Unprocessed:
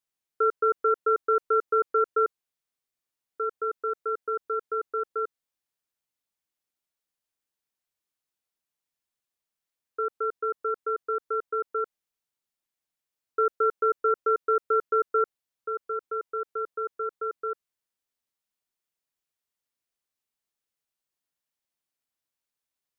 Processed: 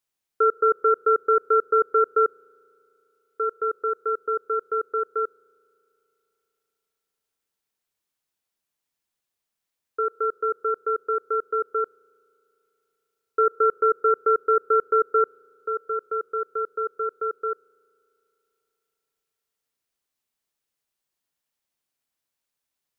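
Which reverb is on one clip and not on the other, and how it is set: spring tank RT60 3.1 s, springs 35 ms, chirp 30 ms, DRR 19.5 dB; gain +4 dB

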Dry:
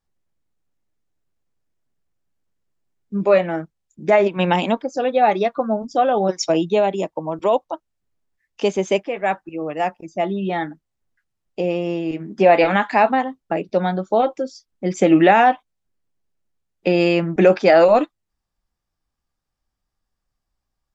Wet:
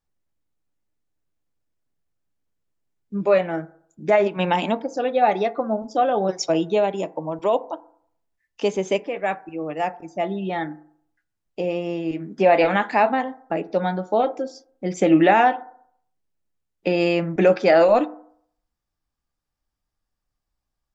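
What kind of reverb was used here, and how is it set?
FDN reverb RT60 0.62 s, low-frequency decay 0.9×, high-frequency decay 0.3×, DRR 13.5 dB; gain -3 dB

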